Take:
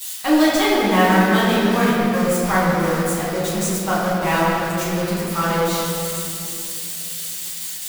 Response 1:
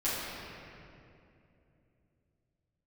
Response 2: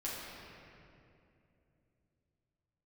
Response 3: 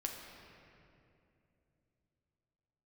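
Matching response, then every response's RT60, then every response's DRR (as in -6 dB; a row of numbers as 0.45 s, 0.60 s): 1; 2.7 s, 2.7 s, 2.8 s; -12.0 dB, -8.0 dB, 0.5 dB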